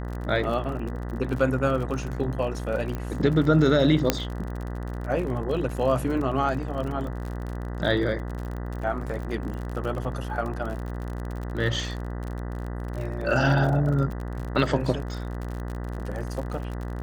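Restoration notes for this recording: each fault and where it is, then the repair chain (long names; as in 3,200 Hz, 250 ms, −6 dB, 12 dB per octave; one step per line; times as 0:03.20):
mains buzz 60 Hz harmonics 33 −32 dBFS
surface crackle 45 per second −32 dBFS
0:02.95: click −19 dBFS
0:04.10: click −4 dBFS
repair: click removal
hum removal 60 Hz, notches 33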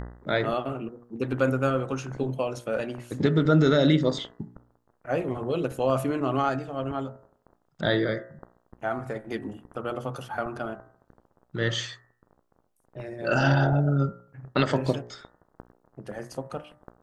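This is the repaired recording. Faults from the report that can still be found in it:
none of them is left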